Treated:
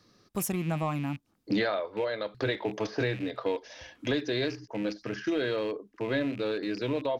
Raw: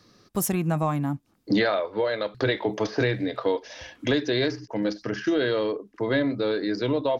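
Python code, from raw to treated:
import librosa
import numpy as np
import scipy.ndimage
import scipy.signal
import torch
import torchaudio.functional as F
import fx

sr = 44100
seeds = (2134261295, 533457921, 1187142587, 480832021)

y = fx.rattle_buzz(x, sr, strikes_db=-35.0, level_db=-29.0)
y = y * librosa.db_to_amplitude(-5.5)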